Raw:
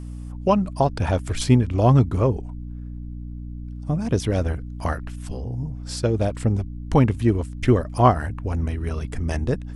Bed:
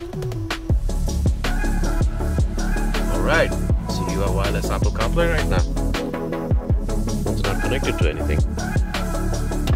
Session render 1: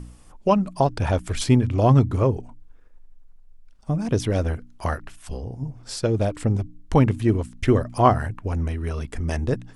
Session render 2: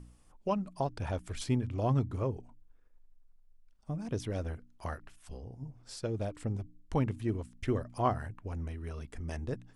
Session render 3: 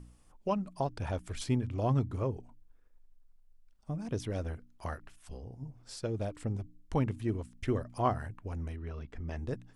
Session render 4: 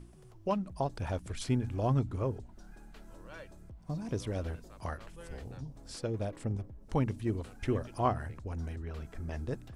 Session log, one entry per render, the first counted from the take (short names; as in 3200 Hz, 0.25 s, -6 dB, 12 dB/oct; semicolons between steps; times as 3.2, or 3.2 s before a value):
de-hum 60 Hz, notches 5
gain -13 dB
8.76–9.37 air absorption 150 m
add bed -31 dB